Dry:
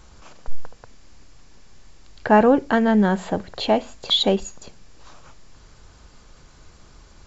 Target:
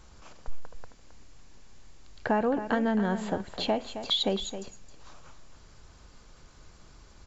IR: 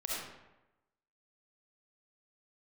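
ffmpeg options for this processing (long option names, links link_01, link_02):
-af "acompressor=threshold=-18dB:ratio=6,aecho=1:1:267:0.282,volume=-5dB"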